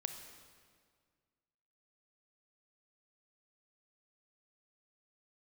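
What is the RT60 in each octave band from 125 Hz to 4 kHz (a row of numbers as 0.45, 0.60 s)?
2.2, 2.1, 2.0, 1.8, 1.6, 1.5 s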